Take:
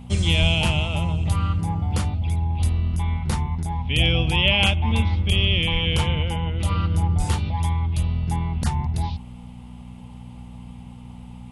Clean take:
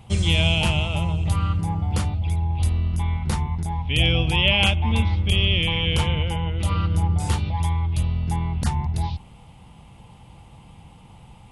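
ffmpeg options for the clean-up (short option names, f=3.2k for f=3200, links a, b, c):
-filter_complex "[0:a]bandreject=f=60.8:t=h:w=4,bandreject=f=121.6:t=h:w=4,bandreject=f=182.4:t=h:w=4,bandreject=f=243.2:t=h:w=4,asplit=3[a][b][c];[a]afade=t=out:st=0.4:d=0.02[d];[b]highpass=f=140:w=0.5412,highpass=f=140:w=1.3066,afade=t=in:st=0.4:d=0.02,afade=t=out:st=0.52:d=0.02[e];[c]afade=t=in:st=0.52:d=0.02[f];[d][e][f]amix=inputs=3:normalize=0,asplit=3[g][h][i];[g]afade=t=out:st=5.72:d=0.02[j];[h]highpass=f=140:w=0.5412,highpass=f=140:w=1.3066,afade=t=in:st=5.72:d=0.02,afade=t=out:st=5.84:d=0.02[k];[i]afade=t=in:st=5.84:d=0.02[l];[j][k][l]amix=inputs=3:normalize=0,asplit=3[m][n][o];[m]afade=t=out:st=7.17:d=0.02[p];[n]highpass=f=140:w=0.5412,highpass=f=140:w=1.3066,afade=t=in:st=7.17:d=0.02,afade=t=out:st=7.29:d=0.02[q];[o]afade=t=in:st=7.29:d=0.02[r];[p][q][r]amix=inputs=3:normalize=0"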